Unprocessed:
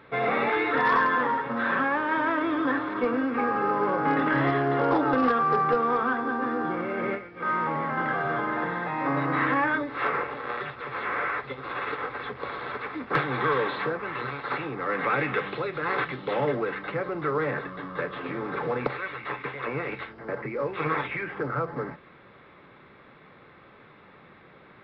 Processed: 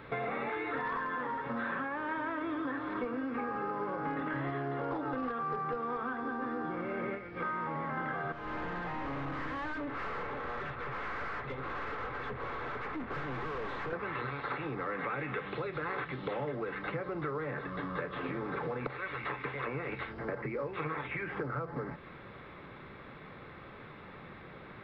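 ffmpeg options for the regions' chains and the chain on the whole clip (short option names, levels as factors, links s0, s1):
-filter_complex "[0:a]asettb=1/sr,asplit=3[s0][s1][s2];[s0]atrim=end=8.324[s3];[s1]atrim=start=8.32:end=13.93,asetpts=PTS-STARTPTS,afade=t=in:d=0.004:c=qsin,afade=t=out:st=5.606:d=0.004:c=qsin,aemphasis=mode=production:type=75kf,aeval=exprs='(tanh(63.1*val(0)+0.15)-tanh(0.15))/63.1':c=same,lowpass=1900[s4];[s2]atrim=start=13.926[s5];[s3][s4]acrossfade=d=0.004:c1=hsin:c2=qsin[s6];[s6][s5]acrossfade=d=0.004:c1=qsin:c2=hsin,acrossover=split=3700[s7][s8];[s8]acompressor=threshold=0.00158:ratio=4:attack=1:release=60[s9];[s7][s9]amix=inputs=2:normalize=0,lowshelf=f=99:g=10,acompressor=threshold=0.0158:ratio=6,volume=1.26"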